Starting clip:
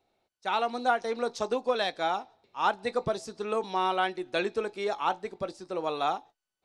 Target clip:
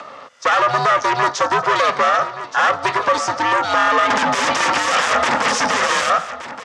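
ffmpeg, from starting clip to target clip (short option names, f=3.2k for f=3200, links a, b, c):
-filter_complex "[0:a]acrossover=split=220|890|2900[a][b][c][d];[a]acompressor=threshold=-53dB:ratio=4[e];[b]acompressor=threshold=-37dB:ratio=4[f];[c]acompressor=threshold=-39dB:ratio=4[g];[d]acompressor=threshold=-45dB:ratio=4[h];[e][f][g][h]amix=inputs=4:normalize=0,asoftclip=type=tanh:threshold=-39.5dB,acompressor=mode=upward:threshold=-54dB:ratio=2.5,asettb=1/sr,asplit=3[i][j][k];[i]atrim=end=4.104[l];[j]atrim=start=4.1:end=6.1,asetpts=PTS-STARTPTS,afade=t=in:d=0.004:c=qsin,afade=t=out:st=1.996:d=0.004:c=qsin,aeval=exprs='0.0106*sin(PI/2*3.98*val(0)/0.0106)':c=same[m];[k]atrim=start=6.096[n];[l][m]acrossfade=d=0.004:c1=hsin:c2=qsin[o];[o][n]acrossfade=d=0.004:c1=qsin:c2=hsin,afreqshift=200,aeval=exprs='val(0)*sin(2*PI*300*n/s)':c=same,highpass=170,equalizer=f=330:t=q:w=4:g=-9,equalizer=f=530:t=q:w=4:g=7,equalizer=f=1.2k:t=q:w=4:g=8,equalizer=f=1.8k:t=q:w=4:g=6,equalizer=f=4.2k:t=q:w=4:g=-7,lowpass=f=6.9k:w=0.5412,lowpass=f=6.9k:w=1.3066,aecho=1:1:1173:0.2,alimiter=level_in=32dB:limit=-1dB:release=50:level=0:latency=1,volume=-4.5dB"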